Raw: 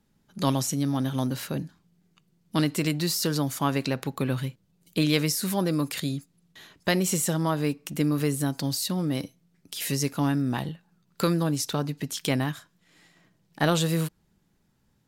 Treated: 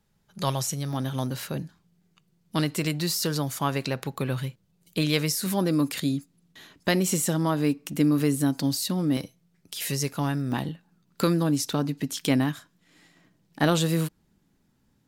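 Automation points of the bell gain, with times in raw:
bell 270 Hz 0.48 oct
-13 dB
from 0.93 s -4.5 dB
from 5.46 s +5.5 dB
from 9.17 s -5 dB
from 10.52 s +6 dB

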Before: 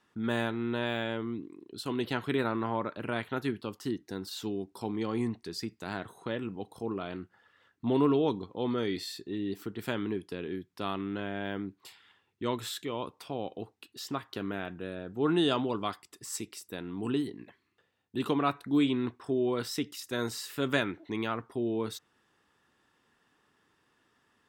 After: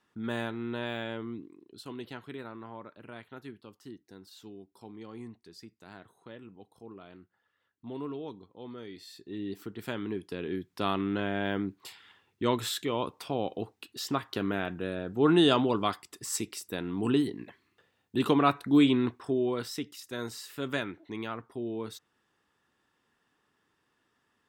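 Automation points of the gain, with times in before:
1.35 s -3 dB
2.38 s -12.5 dB
8.96 s -12.5 dB
9.39 s -2.5 dB
10 s -2.5 dB
10.73 s +4.5 dB
18.95 s +4.5 dB
19.9 s -4 dB

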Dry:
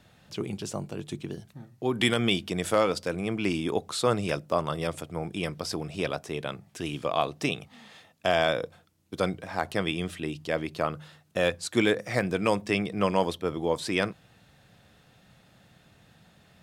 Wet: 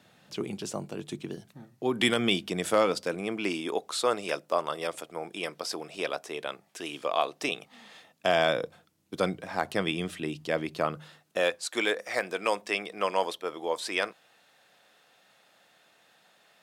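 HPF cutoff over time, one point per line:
2.86 s 170 Hz
3.79 s 400 Hz
7.37 s 400 Hz
8.35 s 140 Hz
10.97 s 140 Hz
11.62 s 510 Hz

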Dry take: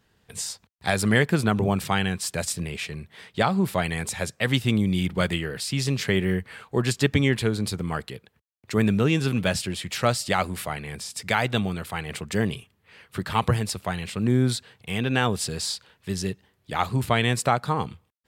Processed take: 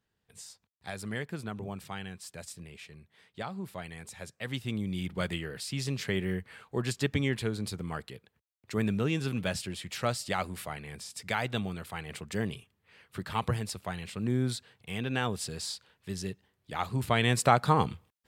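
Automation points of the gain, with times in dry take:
4.03 s -16 dB
5.31 s -8 dB
16.83 s -8 dB
17.67 s +1 dB

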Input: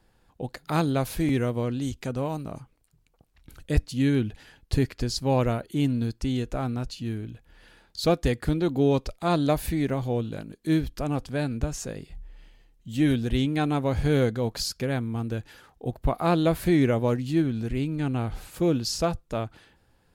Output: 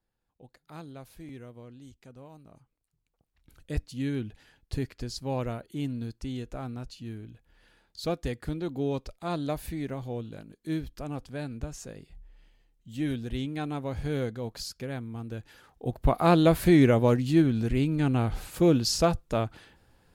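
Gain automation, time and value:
2.29 s -19.5 dB
3.71 s -8 dB
15.25 s -8 dB
16.13 s +2 dB

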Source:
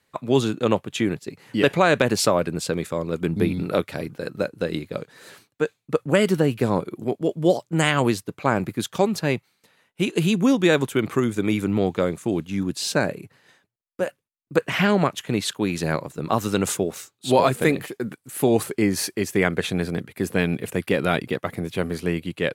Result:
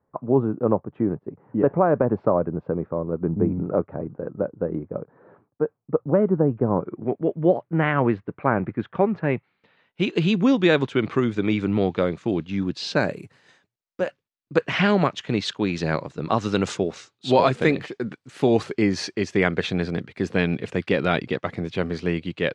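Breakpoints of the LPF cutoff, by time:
LPF 24 dB/oct
6.64 s 1100 Hz
7.07 s 2000 Hz
9.22 s 2000 Hz
10.01 s 4800 Hz
12.92 s 4800 Hz
13.2 s 9400 Hz
14.06 s 5600 Hz

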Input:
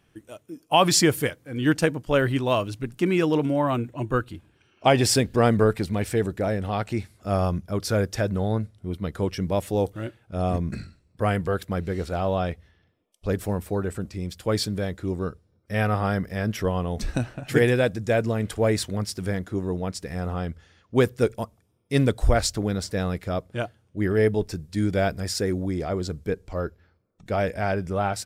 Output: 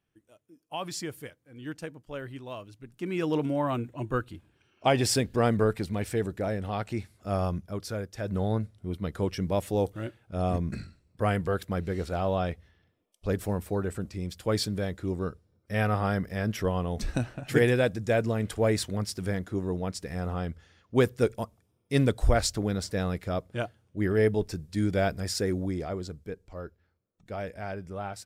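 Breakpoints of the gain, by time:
2.8 s -17 dB
3.32 s -5 dB
7.58 s -5 dB
8.14 s -13.5 dB
8.35 s -3 dB
25.65 s -3 dB
26.3 s -11 dB

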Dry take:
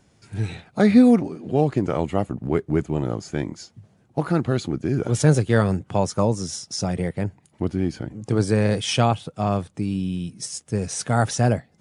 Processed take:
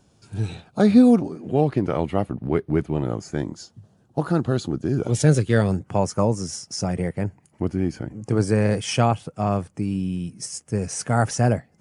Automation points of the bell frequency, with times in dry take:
bell -11.5 dB 0.39 oct
1.24 s 2000 Hz
1.65 s 7200 Hz
3 s 7200 Hz
3.43 s 2200 Hz
4.95 s 2200 Hz
5.47 s 630 Hz
5.88 s 3700 Hz

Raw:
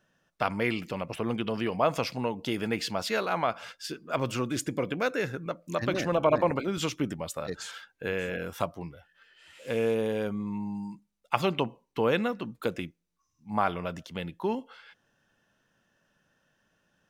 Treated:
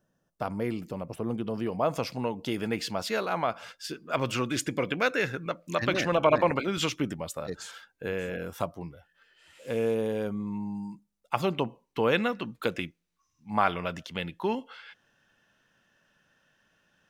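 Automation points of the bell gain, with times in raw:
bell 2500 Hz 2.2 oct
1.4 s -13.5 dB
2.23 s -2 dB
3.71 s -2 dB
4.44 s +6 dB
6.76 s +6 dB
7.44 s -4 dB
11.5 s -4 dB
12.29 s +5.5 dB

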